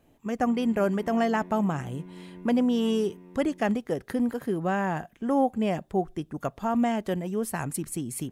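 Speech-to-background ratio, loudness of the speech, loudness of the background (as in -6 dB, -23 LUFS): 18.5 dB, -27.5 LUFS, -46.0 LUFS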